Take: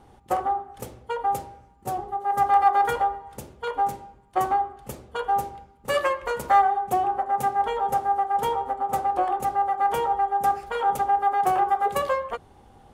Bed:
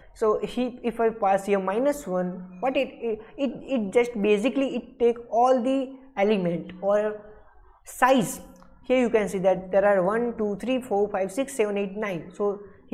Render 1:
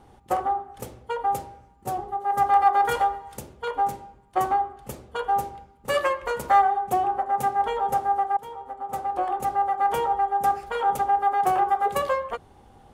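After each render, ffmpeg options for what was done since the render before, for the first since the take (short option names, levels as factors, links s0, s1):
-filter_complex "[0:a]asettb=1/sr,asplit=3[s0][s1][s2];[s0]atrim=end=2.914[s3];[s1]atrim=start=2.91:end=3.39,asetpts=PTS-STARTPTS,afade=t=in:d=0.004:c=qsin,afade=t=out:st=0.476:d=0.004:c=qsin,highshelf=f=2500:g=9.5[s4];[s2]atrim=start=3.386[s5];[s3][s4]acrossfade=d=0.004:c1=hsin:c2=qsin[s6];[s6][s5]acrossfade=d=0.004:c1=qsin:c2=hsin,asplit=2[s7][s8];[s7]atrim=end=8.37,asetpts=PTS-STARTPTS,afade=t=out:st=8.366:d=0.004:c=hsin:silence=0.11885[s9];[s8]atrim=start=8.37,asetpts=PTS-STARTPTS,afade=t=in:d=1.17:silence=0.11885[s10];[s9][s10]concat=n=2:v=0:a=1"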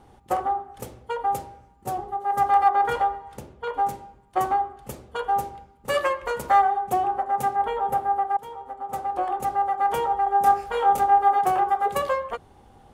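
-filter_complex "[0:a]asettb=1/sr,asplit=3[s0][s1][s2];[s0]atrim=end=2.694[s3];[s1]atrim=start=2.69:end=3.74,asetpts=PTS-STARTPTS,afade=t=in:d=0.004:c=qsin,afade=t=out:st=1.046:d=0.004:c=qsin,highshelf=f=4600:g=-11[s4];[s2]atrim=start=3.736[s5];[s3][s4]acrossfade=d=0.004:c1=hsin:c2=qsin[s6];[s6][s5]acrossfade=d=0.004:c1=qsin:c2=hsin,asettb=1/sr,asplit=3[s7][s8][s9];[s7]atrim=end=7.564[s10];[s8]atrim=start=7.56:end=8.3,asetpts=PTS-STARTPTS,afade=t=in:d=0.004:c=qsin,afade=t=out:st=0.736:d=0.004:c=qsin,equalizer=f=6100:w=0.92:g=-9[s11];[s9]atrim=start=8.296[s12];[s10][s11]acrossfade=d=0.004:c1=hsin:c2=qsin[s13];[s13][s12]acrossfade=d=0.004:c1=qsin:c2=hsin,asettb=1/sr,asplit=3[s14][s15][s16];[s14]atrim=end=10.244[s17];[s15]atrim=start=10.24:end=11.39,asetpts=PTS-STARTPTS,afade=t=in:d=0.004:c=qsin,afade=t=out:st=1.146:d=0.004:c=qsin,asplit=2[s18][s19];[s19]adelay=25,volume=0.708[s20];[s18][s20]amix=inputs=2:normalize=0,atrim=end_sample=50715[s21];[s16]atrim=start=11.386[s22];[s17][s21]acrossfade=d=0.004:c1=hsin:c2=qsin[s23];[s23][s22]acrossfade=d=0.004:c1=qsin:c2=hsin"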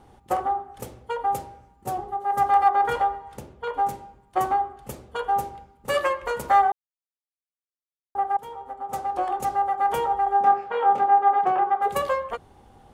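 -filter_complex "[0:a]asettb=1/sr,asplit=3[s0][s1][s2];[s0]atrim=end=8.914[s3];[s1]atrim=start=8.91:end=9.6,asetpts=PTS-STARTPTS,afade=t=in:d=0.004:c=qsin,afade=t=out:st=0.686:d=0.004:c=qsin,equalizer=f=5700:t=o:w=1.4:g=5[s4];[s2]atrim=start=9.596[s5];[s3][s4]acrossfade=d=0.004:c1=hsin:c2=qsin[s6];[s6][s5]acrossfade=d=0.004:c1=qsin:c2=hsin,asettb=1/sr,asplit=3[s7][s8][s9];[s7]atrim=end=10.414[s10];[s8]atrim=start=10.41:end=11.82,asetpts=PTS-STARTPTS,afade=t=in:d=0.004:c=qsin,afade=t=out:st=1.406:d=0.004:c=qsin,highpass=170,lowpass=2600[s11];[s9]atrim=start=11.816[s12];[s10][s11]acrossfade=d=0.004:c1=hsin:c2=qsin[s13];[s13][s12]acrossfade=d=0.004:c1=qsin:c2=hsin,asplit=3[s14][s15][s16];[s14]atrim=end=6.72,asetpts=PTS-STARTPTS,afade=t=out:st=6.716:d=0.004:c=hsin[s17];[s15]atrim=start=6.72:end=8.15,asetpts=PTS-STARTPTS,volume=0[s18];[s16]atrim=start=8.15,asetpts=PTS-STARTPTS,afade=t=in:d=0.004:c=hsin[s19];[s17][s18][s19]concat=n=3:v=0:a=1"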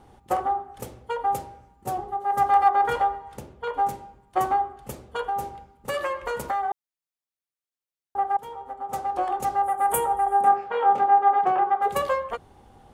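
-filter_complex "[0:a]asettb=1/sr,asplit=3[s0][s1][s2];[s0]atrim=end=5.214[s3];[s1]atrim=start=5.21:end=6.71,asetpts=PTS-STARTPTS,afade=t=in:d=0.004:c=qsin,afade=t=out:st=1.496:d=0.004:c=qsin,acompressor=threshold=0.0708:ratio=6:attack=3.2:release=140:knee=1:detection=peak[s4];[s2]atrim=start=6.706[s5];[s3][s4]acrossfade=d=0.004:c1=hsin:c2=qsin[s6];[s6][s5]acrossfade=d=0.004:c1=qsin:c2=hsin,asettb=1/sr,asplit=3[s7][s8][s9];[s7]atrim=end=9.634[s10];[s8]atrim=start=9.63:end=10.56,asetpts=PTS-STARTPTS,afade=t=in:d=0.004:c=qsin,afade=t=out:st=0.926:d=0.004:c=qsin,highshelf=f=7000:t=q:w=3:g=12[s11];[s9]atrim=start=10.556[s12];[s10][s11]acrossfade=d=0.004:c1=hsin:c2=qsin[s13];[s13][s12]acrossfade=d=0.004:c1=qsin:c2=hsin"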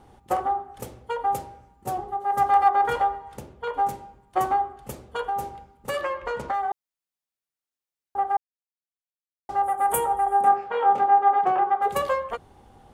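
-filter_complex "[0:a]asettb=1/sr,asplit=3[s0][s1][s2];[s0]atrim=end=6.014[s3];[s1]atrim=start=6.01:end=6.54,asetpts=PTS-STARTPTS,afade=t=in:d=0.004:c=qsin,afade=t=out:st=0.526:d=0.004:c=qsin,adynamicsmooth=sensitivity=2.5:basefreq=4800[s4];[s2]atrim=start=6.536[s5];[s3][s4]acrossfade=d=0.004:c1=hsin:c2=qsin[s6];[s6][s5]acrossfade=d=0.004:c1=qsin:c2=hsin,asplit=3[s7][s8][s9];[s7]atrim=end=8.37,asetpts=PTS-STARTPTS,afade=t=out:st=8.366:d=0.004:c=hsin[s10];[s8]atrim=start=8.37:end=9.49,asetpts=PTS-STARTPTS,volume=0[s11];[s9]atrim=start=9.49,asetpts=PTS-STARTPTS,afade=t=in:d=0.004:c=hsin[s12];[s10][s11][s12]concat=n=3:v=0:a=1"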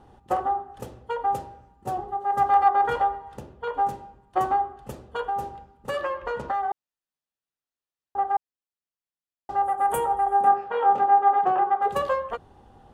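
-af "lowpass=f=3700:p=1,bandreject=f=2200:w=8.7"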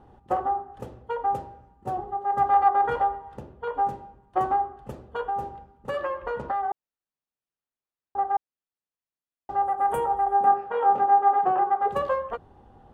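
-af "highshelf=f=3100:g=-11.5"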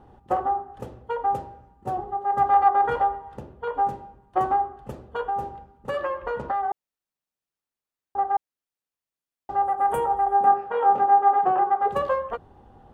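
-af "volume=1.19"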